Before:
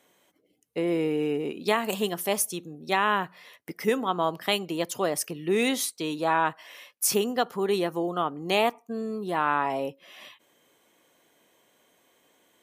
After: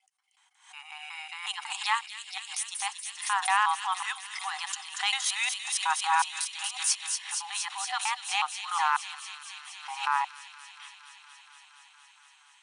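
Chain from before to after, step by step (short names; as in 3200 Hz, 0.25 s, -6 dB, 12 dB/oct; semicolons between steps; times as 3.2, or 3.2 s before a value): slices in reverse order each 0.183 s, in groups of 4; in parallel at -9.5 dB: hard clip -21 dBFS, distortion -10 dB; on the sum: transient shaper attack -6 dB, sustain -10 dB; on a send: thin delay 0.234 s, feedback 83%, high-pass 3400 Hz, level -5 dB; on the sum: FFT band-pass 750–10000 Hz; backwards sustainer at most 120 dB/s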